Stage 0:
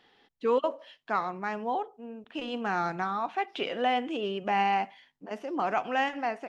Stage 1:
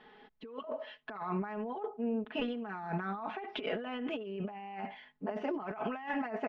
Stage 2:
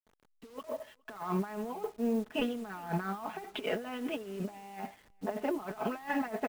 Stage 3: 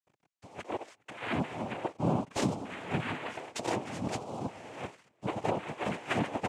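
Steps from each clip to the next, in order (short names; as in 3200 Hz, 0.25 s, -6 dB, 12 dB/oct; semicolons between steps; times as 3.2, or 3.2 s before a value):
LPF 2200 Hz 12 dB/oct; comb 4.7 ms, depth 97%; negative-ratio compressor -36 dBFS, ratio -1; gain -2.5 dB
level-crossing sampler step -49 dBFS; echo 0.412 s -22.5 dB; upward expander 1.5:1, over -54 dBFS; gain +3.5 dB
noise vocoder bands 4; gain +1.5 dB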